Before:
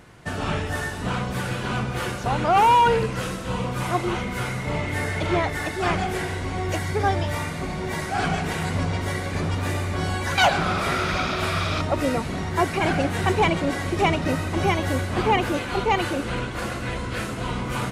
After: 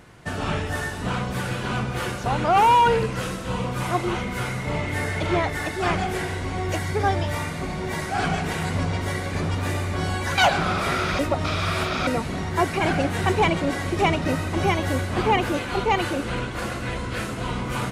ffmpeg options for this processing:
ffmpeg -i in.wav -filter_complex "[0:a]asplit=3[link_01][link_02][link_03];[link_01]atrim=end=11.192[link_04];[link_02]atrim=start=11.188:end=12.072,asetpts=PTS-STARTPTS,areverse[link_05];[link_03]atrim=start=12.068[link_06];[link_04][link_05]acrossfade=duration=0.004:curve1=hsin:curve2=hsin[link_07];[link_07][link_06]acrossfade=duration=0.004:curve1=hsin:curve2=hsin" out.wav

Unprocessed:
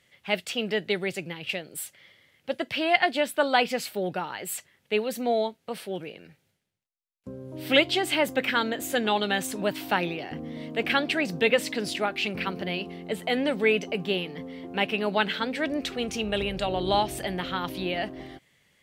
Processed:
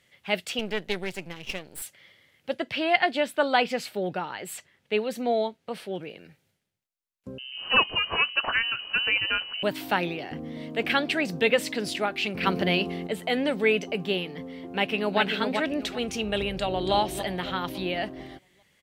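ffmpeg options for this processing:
ffmpeg -i in.wav -filter_complex "[0:a]asettb=1/sr,asplit=3[link_01][link_02][link_03];[link_01]atrim=end=0.594[link_04];[link_02]atrim=start=0.59:end=1.82,asetpts=PTS-STARTPTS,afade=type=in:duration=0.004:curve=qsin,afade=type=out:start_time=1.226:duration=0.004:curve=qsin,aeval=exprs='if(lt(val(0),0),0.251*val(0),val(0))':channel_layout=same[link_05];[link_03]atrim=start=1.816[link_06];[link_04][link_05]acrossfade=duration=0.004:curve1=hsin:curve2=qsin[link_07];[link_07][link_06]acrossfade=duration=0.004:curve1=qsin:curve2=hsin,asettb=1/sr,asplit=3[link_08][link_09][link_10];[link_08]atrim=end=2.544[link_11];[link_09]atrim=start=2.54:end=6.1,asetpts=PTS-STARTPTS,afade=type=in:duration=0.004:curve=qsin,afade=type=out:start_time=3.556:duration=0.004:curve=qsin,highshelf=frequency=9000:gain=-10.5[link_12];[link_10]atrim=start=6.096[link_13];[link_11][link_12]acrossfade=duration=0.004:curve1=hsin:curve2=qsin[link_14];[link_14][link_13]acrossfade=duration=0.004:curve1=qsin:curve2=hsin,asettb=1/sr,asplit=3[link_15][link_16][link_17];[link_15]atrim=end=7.384[link_18];[link_16]atrim=start=7.38:end=9.63,asetpts=PTS-STARTPTS,afade=type=in:duration=0.004:curve=qsin,afade=type=out:start_time=2.246:duration=0.004:curve=qsin,lowpass=frequency=2700:width_type=q:width=0.5098,lowpass=frequency=2700:width_type=q:width=0.6013,lowpass=frequency=2700:width_type=q:width=0.9,lowpass=frequency=2700:width_type=q:width=2.563,afreqshift=-3200[link_19];[link_17]atrim=start=9.626[link_20];[link_18][link_19]acrossfade=duration=0.004:curve1=hsin:curve2=qsin[link_21];[link_21][link_20]acrossfade=duration=0.004:curve1=qsin:curve2=hsin,asettb=1/sr,asplit=3[link_22][link_23][link_24];[link_22]atrim=end=12.434[link_25];[link_23]atrim=start=12.43:end=13.07,asetpts=PTS-STARTPTS,afade=type=in:duration=0.004:curve=qsin,afade=type=out:start_time=0.636:duration=0.004:curve=qsin,acontrast=75[link_26];[link_24]atrim=start=13.066[link_27];[link_25][link_26]acrossfade=duration=0.004:curve1=hsin:curve2=qsin[link_28];[link_28][link_27]acrossfade=duration=0.004:curve1=qsin:curve2=hsin,asplit=2[link_29][link_30];[link_30]afade=type=in:start_time=14.51:duration=0.01,afade=type=out:start_time=15.2:duration=0.01,aecho=0:1:390|780|1170:0.595662|0.148916|0.0372289[link_31];[link_29][link_31]amix=inputs=2:normalize=0,asplit=2[link_32][link_33];[link_33]afade=type=in:start_time=16.53:duration=0.01,afade=type=out:start_time=16.94:duration=0.01,aecho=0:1:280|560|840|1120|1400|1680:0.334965|0.167483|0.0837414|0.0418707|0.0209353|0.0104677[link_34];[link_32][link_34]amix=inputs=2:normalize=0" out.wav

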